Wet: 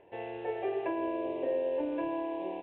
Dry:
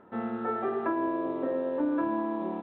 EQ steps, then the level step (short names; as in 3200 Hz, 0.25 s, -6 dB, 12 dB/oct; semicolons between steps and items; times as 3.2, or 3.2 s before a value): synth low-pass 2700 Hz, resonance Q 4.8; fixed phaser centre 540 Hz, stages 4; 0.0 dB